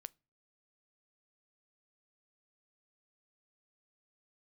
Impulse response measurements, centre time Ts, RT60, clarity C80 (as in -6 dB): 1 ms, not exponential, 36.0 dB